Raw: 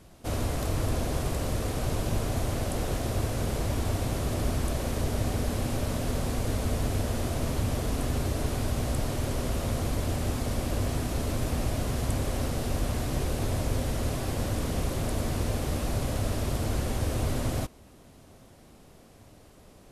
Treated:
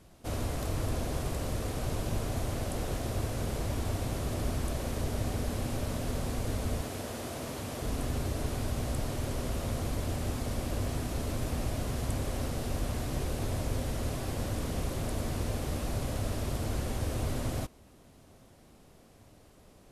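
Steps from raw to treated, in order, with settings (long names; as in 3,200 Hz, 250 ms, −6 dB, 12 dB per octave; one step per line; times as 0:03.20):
0:06.81–0:07.82: high-pass filter 260 Hz 6 dB per octave
level −4 dB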